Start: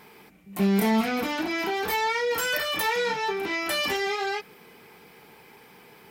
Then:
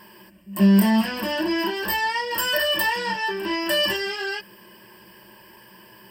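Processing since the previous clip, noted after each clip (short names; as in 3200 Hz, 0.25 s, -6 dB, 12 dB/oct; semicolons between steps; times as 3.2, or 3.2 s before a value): ripple EQ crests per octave 1.3, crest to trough 17 dB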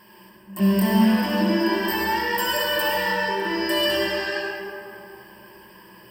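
reverb RT60 2.7 s, pre-delay 53 ms, DRR -3 dB; gain -4 dB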